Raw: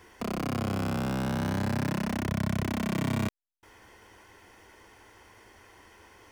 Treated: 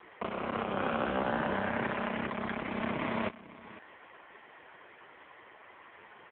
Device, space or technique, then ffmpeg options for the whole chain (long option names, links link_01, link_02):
satellite phone: -af "highpass=380,lowpass=3100,aecho=1:1:500:0.133,volume=7.5dB" -ar 8000 -c:a libopencore_amrnb -b:a 5150